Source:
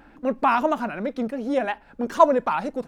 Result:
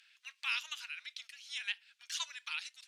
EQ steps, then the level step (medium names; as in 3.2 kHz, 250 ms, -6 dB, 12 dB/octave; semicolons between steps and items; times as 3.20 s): inverse Chebyshev high-pass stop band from 490 Hz, stop band 80 dB; distance through air 50 m; +7.0 dB